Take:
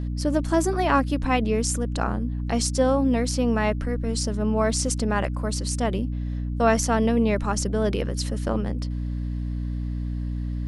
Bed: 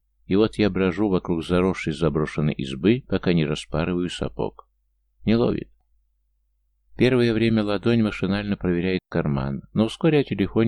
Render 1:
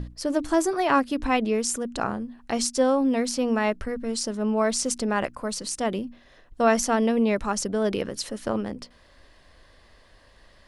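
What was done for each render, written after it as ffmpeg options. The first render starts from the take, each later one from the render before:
-af "bandreject=f=60:t=h:w=6,bandreject=f=120:t=h:w=6,bandreject=f=180:t=h:w=6,bandreject=f=240:t=h:w=6,bandreject=f=300:t=h:w=6"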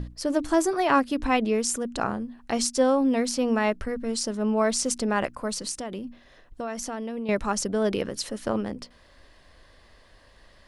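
-filter_complex "[0:a]asettb=1/sr,asplit=3[a][b][c];[a]atrim=end=5.714[d];[b]atrim=start=5.71:end=7.29,asetpts=PTS-STARTPTS,afade=t=in:d=0.004:c=qsin,afade=t=out:st=1.576:d=0.004:c=qsin,acompressor=threshold=-30dB:ratio=5:attack=3.2:release=140:knee=1:detection=peak[e];[c]atrim=start=7.286[f];[d][e]acrossfade=d=0.004:c1=hsin:c2=qsin[g];[g][f]acrossfade=d=0.004:c1=qsin:c2=hsin"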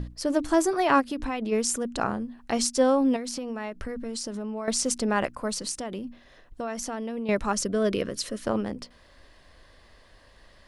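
-filter_complex "[0:a]asplit=3[a][b][c];[a]afade=t=out:st=1:d=0.02[d];[b]acompressor=threshold=-26dB:ratio=6:attack=3.2:release=140:knee=1:detection=peak,afade=t=in:st=1:d=0.02,afade=t=out:st=1.51:d=0.02[e];[c]afade=t=in:st=1.51:d=0.02[f];[d][e][f]amix=inputs=3:normalize=0,asettb=1/sr,asplit=3[g][h][i];[g]atrim=end=3.164[j];[h]atrim=start=3.16:end=4.68,asetpts=PTS-STARTPTS,afade=t=in:d=0.004:c=qsin,afade=t=out:st=1.516:d=0.004:c=qsin,acompressor=threshold=-29dB:ratio=10:attack=3.2:release=140:knee=1:detection=peak[k];[i]atrim=start=4.676[l];[j][k]acrossfade=d=0.004:c1=hsin:c2=qsin[m];[m][l]acrossfade=d=0.004:c1=qsin:c2=hsin,asettb=1/sr,asplit=3[n][o][p];[n]atrim=end=7.534[q];[o]atrim=start=7.53:end=8.44,asetpts=PTS-STARTPTS,afade=t=in:d=0.004:c=qsin,afade=t=out:st=0.906:d=0.004:c=qsin,asuperstop=centerf=830:order=4:qfactor=3.6[r];[p]atrim=start=8.436[s];[q][r]acrossfade=d=0.004:c1=hsin:c2=qsin[t];[t][s]acrossfade=d=0.004:c1=qsin:c2=hsin"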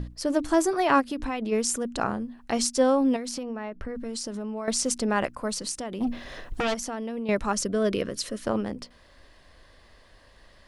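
-filter_complex "[0:a]asettb=1/sr,asplit=3[a][b][c];[a]atrim=end=3.434[d];[b]atrim=start=3.43:end=3.95,asetpts=PTS-STARTPTS,afade=t=in:d=0.004:c=qsin,afade=t=out:st=0.516:d=0.004:c=qsin,lowpass=f=1.9k:p=1[e];[c]atrim=start=3.946[f];[d][e]acrossfade=d=0.004:c1=hsin:c2=qsin[g];[g][f]acrossfade=d=0.004:c1=qsin:c2=hsin,asplit=3[h][i][j];[h]afade=t=out:st=6:d=0.02[k];[i]aeval=exprs='0.0794*sin(PI/2*3.16*val(0)/0.0794)':c=same,afade=t=in:st=6:d=0.02,afade=t=out:st=6.73:d=0.02[l];[j]afade=t=in:st=6.73:d=0.02[m];[k][l][m]amix=inputs=3:normalize=0"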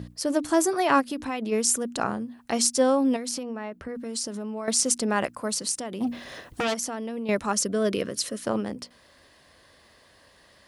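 -af "highpass=100,highshelf=f=7.5k:g=9.5"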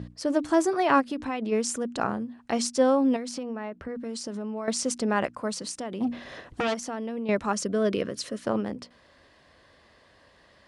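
-af "lowpass=f=10k:w=0.5412,lowpass=f=10k:w=1.3066,highshelf=f=5.4k:g=-12"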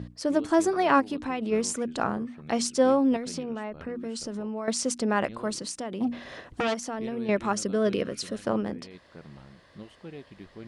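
-filter_complex "[1:a]volume=-24dB[a];[0:a][a]amix=inputs=2:normalize=0"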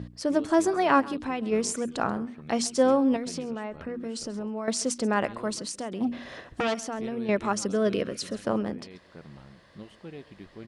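-af "aecho=1:1:134:0.1"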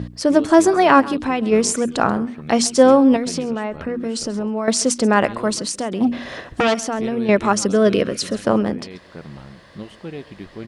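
-af "volume=10dB,alimiter=limit=-1dB:level=0:latency=1"

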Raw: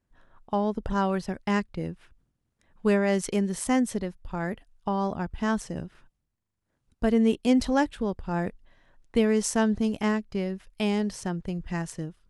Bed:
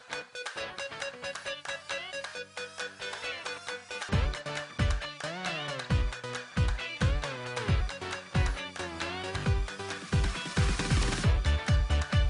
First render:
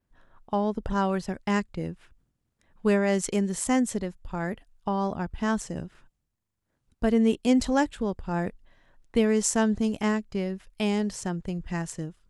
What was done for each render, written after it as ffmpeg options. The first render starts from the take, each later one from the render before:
-af "adynamicequalizer=threshold=0.00126:dfrequency=7300:dqfactor=4.3:tfrequency=7300:tqfactor=4.3:attack=5:release=100:ratio=0.375:range=4:mode=boostabove:tftype=bell"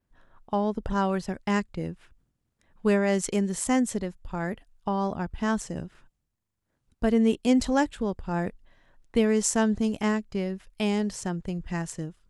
-af anull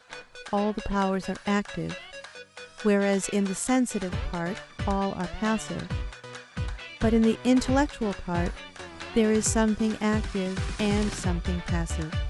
-filter_complex "[1:a]volume=-4dB[a];[0:a][a]amix=inputs=2:normalize=0"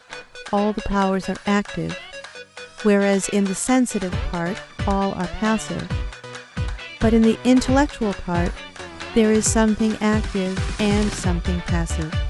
-af "volume=6dB"

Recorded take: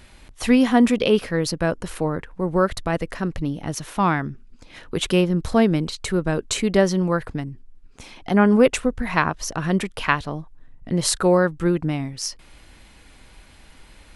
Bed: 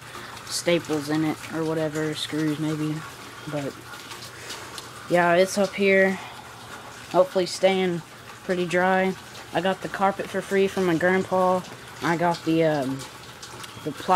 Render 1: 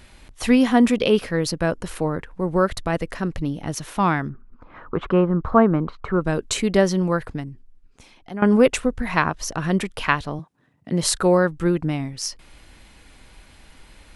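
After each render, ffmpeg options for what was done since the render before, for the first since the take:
-filter_complex "[0:a]asettb=1/sr,asplit=3[a][b][c];[a]atrim=end=4.294[d];[b]atrim=start=4.29:end=6.21,asetpts=PTS-STARTPTS,afade=t=in:d=0.004:c=qsin,afade=t=out:st=1.916:d=0.004:c=qsin,lowpass=f=1.2k:t=q:w=3.7[e];[c]atrim=start=6.206[f];[d][e]acrossfade=d=0.004:c1=hsin:c2=qsin[g];[g][f]acrossfade=d=0.004:c1=qsin:c2=hsin,asettb=1/sr,asplit=3[h][i][j];[h]atrim=end=10.394[k];[i]atrim=start=10.39:end=11.03,asetpts=PTS-STARTPTS,afade=t=in:d=0.004:c=qsin,afade=t=out:st=0.636:d=0.004:c=qsin,highpass=f=120:w=0.5412,highpass=f=120:w=1.3066[l];[j]atrim=start=11.026[m];[k][l]acrossfade=d=0.004:c1=hsin:c2=qsin[n];[n][m]acrossfade=d=0.004:c1=qsin:c2=hsin,asplit=2[o][p];[o]atrim=end=8.42,asetpts=PTS-STARTPTS,afade=t=out:st=7.12:d=1.3:silence=0.177828[q];[p]atrim=start=8.42,asetpts=PTS-STARTPTS,afade=t=in:d=0.004:c=hsin:silence=0.177828[r];[q][r]concat=n=2:v=0:a=1"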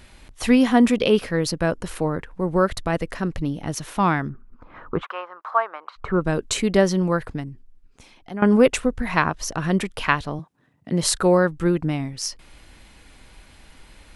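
-filter_complex "[0:a]asplit=3[a][b][c];[a]afade=t=out:st=5.01:d=0.02[d];[b]highpass=f=770:w=0.5412,highpass=f=770:w=1.3066,afade=t=in:st=5.01:d=0.02,afade=t=out:st=5.96:d=0.02[e];[c]afade=t=in:st=5.96:d=0.02[f];[d][e][f]amix=inputs=3:normalize=0"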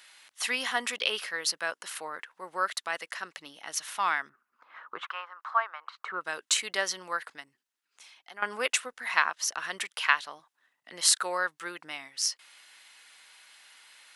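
-af "highpass=1.4k,bandreject=f=2.4k:w=19"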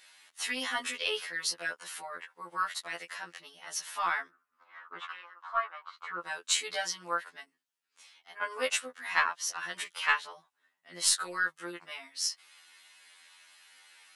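-af "aeval=exprs='0.596*(cos(1*acos(clip(val(0)/0.596,-1,1)))-cos(1*PI/2))+0.00944*(cos(4*acos(clip(val(0)/0.596,-1,1)))-cos(4*PI/2))+0.00596*(cos(7*acos(clip(val(0)/0.596,-1,1)))-cos(7*PI/2))':c=same,afftfilt=real='re*2*eq(mod(b,4),0)':imag='im*2*eq(mod(b,4),0)':win_size=2048:overlap=0.75"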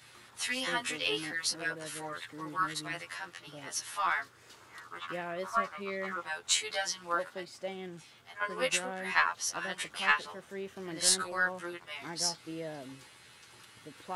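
-filter_complex "[1:a]volume=-19.5dB[a];[0:a][a]amix=inputs=2:normalize=0"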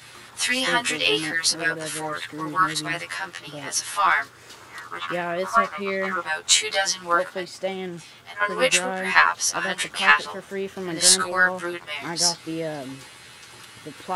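-af "volume=11dB,alimiter=limit=-1dB:level=0:latency=1"

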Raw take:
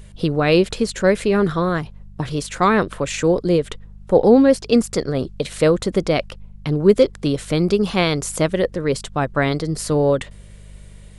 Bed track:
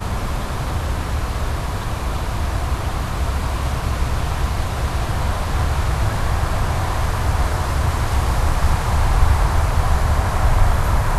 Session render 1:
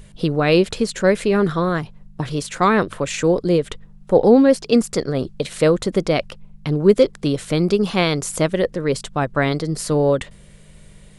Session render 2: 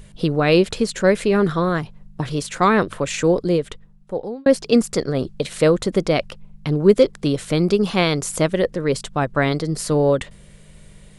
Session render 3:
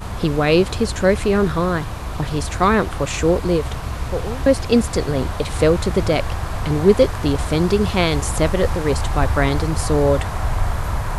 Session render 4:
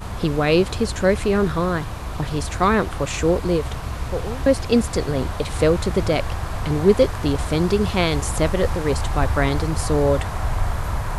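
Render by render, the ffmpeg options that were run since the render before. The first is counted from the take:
-af "bandreject=f=50:t=h:w=4,bandreject=f=100:t=h:w=4"
-filter_complex "[0:a]asplit=2[a][b];[a]atrim=end=4.46,asetpts=PTS-STARTPTS,afade=t=out:st=3.33:d=1.13[c];[b]atrim=start=4.46,asetpts=PTS-STARTPTS,afade=t=in:d=0.004:c=hsin[d];[c][d]concat=n=2:v=0:a=1"
-filter_complex "[1:a]volume=-5dB[a];[0:a][a]amix=inputs=2:normalize=0"
-af "volume=-2dB"

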